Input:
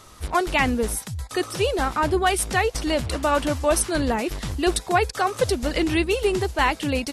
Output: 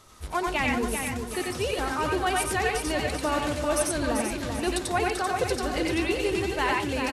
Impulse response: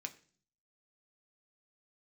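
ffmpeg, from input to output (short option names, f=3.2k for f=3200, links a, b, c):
-filter_complex "[0:a]aecho=1:1:389|778|1167|1556|1945:0.473|0.189|0.0757|0.0303|0.0121,asplit=2[a][b];[1:a]atrim=start_sample=2205,adelay=91[c];[b][c]afir=irnorm=-1:irlink=0,volume=2dB[d];[a][d]amix=inputs=2:normalize=0,volume=-7dB"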